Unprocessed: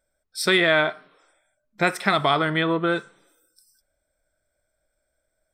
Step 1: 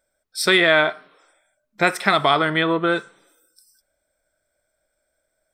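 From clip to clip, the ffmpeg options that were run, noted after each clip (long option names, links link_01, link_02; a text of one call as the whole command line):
ffmpeg -i in.wav -af "lowshelf=frequency=150:gain=-8.5,volume=3.5dB" out.wav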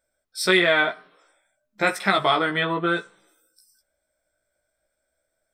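ffmpeg -i in.wav -af "flanger=delay=15:depth=2.1:speed=0.55" out.wav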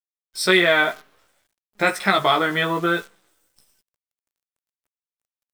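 ffmpeg -i in.wav -af "acrusher=bits=8:dc=4:mix=0:aa=0.000001,volume=2dB" out.wav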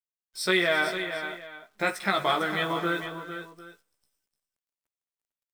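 ffmpeg -i in.wav -af "aecho=1:1:217|341|451|750:0.119|0.158|0.335|0.112,volume=-7.5dB" out.wav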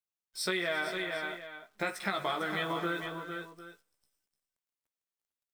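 ffmpeg -i in.wav -af "acompressor=threshold=-27dB:ratio=4,volume=-2.5dB" out.wav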